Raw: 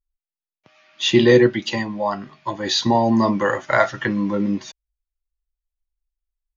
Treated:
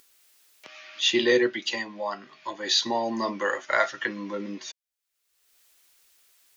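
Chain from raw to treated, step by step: high-pass 460 Hz 12 dB/octave; peaking EQ 820 Hz -7.5 dB 1.4 oct; upward compressor, threshold -32 dBFS; trim -1.5 dB

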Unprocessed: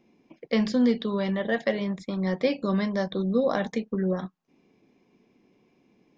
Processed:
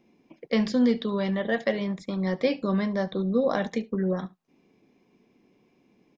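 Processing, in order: 2.64–3.51 s: treble shelf 5.5 kHz -10 dB; delay 72 ms -21.5 dB

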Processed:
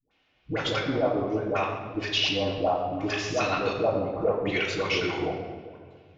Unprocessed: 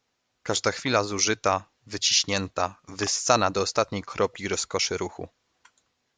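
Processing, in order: compression 3:1, threshold -31 dBFS, peak gain reduction 12.5 dB; LFO low-pass square 0.69 Hz 720–2900 Hz; phase dispersion highs, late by 110 ms, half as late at 540 Hz; wow and flutter 26 cents; tape echo 133 ms, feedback 74%, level -19.5 dB, low-pass 5.1 kHz; reverberation RT60 1.4 s, pre-delay 3 ms, DRR -3.5 dB

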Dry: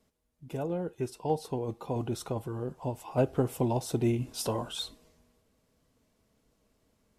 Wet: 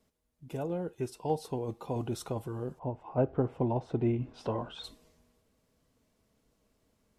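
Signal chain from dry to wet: 2.78–4.83 s: low-pass 1.3 kHz -> 2.5 kHz 12 dB/octave; trim -1.5 dB

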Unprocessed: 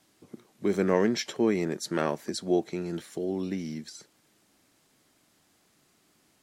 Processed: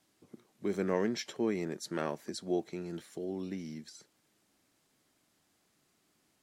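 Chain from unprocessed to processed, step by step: 0.80–3.25 s: crackle 16 per s -45 dBFS; trim -7 dB

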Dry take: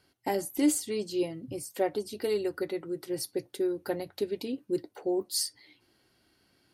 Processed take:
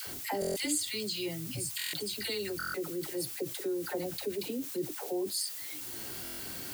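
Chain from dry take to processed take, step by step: band-stop 5.7 kHz, Q 5.6; phase dispersion lows, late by 70 ms, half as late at 700 Hz; upward compressor, threshold -35 dBFS; 0.41–2.59 s: graphic EQ 125/250/500/1000/2000/4000/8000 Hz +6/-5/-7/-5/+5/+8/+6 dB; added noise blue -47 dBFS; buffer glitch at 0.40/1.77/2.58/6.23 s, samples 1024, times 6; level flattener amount 50%; trim -7.5 dB

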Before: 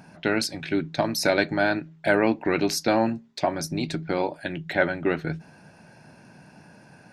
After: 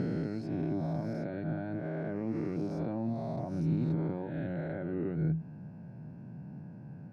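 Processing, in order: reverse spectral sustain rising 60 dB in 1.89 s; in parallel at 0 dB: peak limiter -15.5 dBFS, peak gain reduction 10.5 dB; on the sum: compression, threshold -21 dBFS, peak gain reduction 10.5 dB; band-pass filter 130 Hz, Q 1.3

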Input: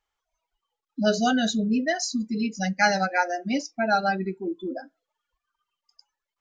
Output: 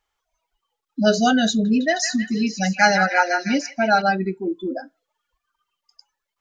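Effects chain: 1.49–4.02 s: repeats whose band climbs or falls 157 ms, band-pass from 1.5 kHz, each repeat 0.7 oct, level -4 dB; trim +5 dB

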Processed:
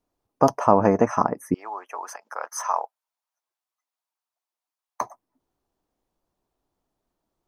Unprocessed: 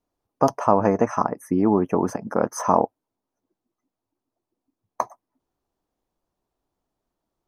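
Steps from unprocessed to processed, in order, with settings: 1.54–5.01 s: Bessel high-pass 1.2 kHz, order 4; trim +1 dB

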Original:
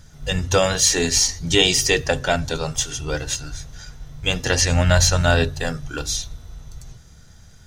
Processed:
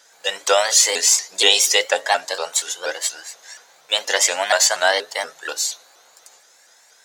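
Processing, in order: high-pass 480 Hz 24 dB/octave; speed mistake 44.1 kHz file played as 48 kHz; vibrato with a chosen wave saw up 4.2 Hz, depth 160 cents; trim +3 dB

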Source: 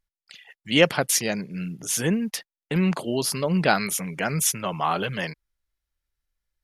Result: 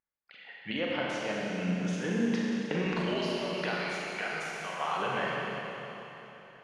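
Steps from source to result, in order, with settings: recorder AGC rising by 13 dB/s; high-pass 650 Hz 6 dB/octave; level-controlled noise filter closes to 2.8 kHz, open at -18 dBFS; 2.86–4.97 s: tilt EQ +4 dB/octave; compression, threshold -27 dBFS, peak gain reduction 20 dB; tape spacing loss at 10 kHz 34 dB; Schroeder reverb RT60 3.6 s, combs from 30 ms, DRR -4.5 dB

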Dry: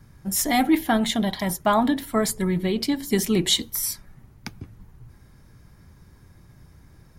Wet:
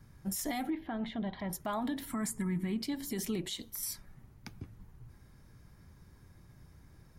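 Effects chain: 2.10–2.82 s: graphic EQ 125/250/500/1000/2000/4000/8000 Hz +3/+11/-10/+7/+6/-10/+10 dB; compression 6:1, threshold -23 dBFS, peak gain reduction 11.5 dB; peak limiter -20 dBFS, peak gain reduction 7 dB; 0.70–1.53 s: distance through air 380 m; 3.41–3.83 s: AM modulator 200 Hz, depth 40%; trim -6.5 dB

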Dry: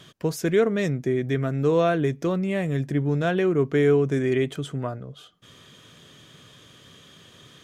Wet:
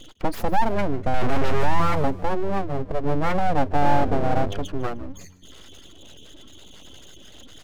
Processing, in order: spectral gate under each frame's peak -10 dB strong; 2.50–3.04 s: peaking EQ 150 Hz -12.5 dB 0.24 oct; in parallel at -0.5 dB: compression, threshold -36 dBFS, peak gain reduction 18 dB; 1.14–1.80 s: on the sum: overdrive pedal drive 39 dB, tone 8 kHz, clips at -11.5 dBFS; 3.81–4.59 s: mains buzz 100 Hz, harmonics 4, -32 dBFS -5 dB/octave; full-wave rectifier; on a send: frequency-shifting echo 152 ms, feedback 35%, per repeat -92 Hz, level -19 dB; on the sum: slew-rate limiter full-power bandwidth 84 Hz; trim +3.5 dB

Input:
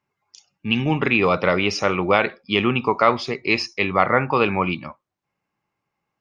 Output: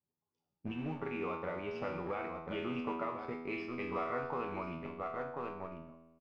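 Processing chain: delay 1038 ms -10.5 dB; in parallel at -5 dB: bit crusher 4-bit; on the sum: compression 16:1, threshold -22 dBFS, peak gain reduction 16.5 dB; feedback comb 82 Hz, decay 1.3 s, harmonics all, mix 90%; level-controlled noise filter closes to 550 Hz, open at -27 dBFS; trim +3 dB

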